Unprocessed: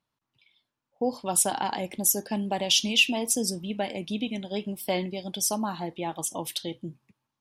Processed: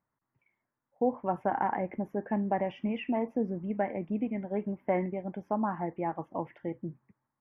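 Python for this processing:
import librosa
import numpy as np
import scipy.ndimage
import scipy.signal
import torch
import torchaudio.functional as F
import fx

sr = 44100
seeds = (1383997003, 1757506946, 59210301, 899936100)

y = scipy.signal.sosfilt(scipy.signal.ellip(4, 1.0, 50, 2000.0, 'lowpass', fs=sr, output='sos'), x)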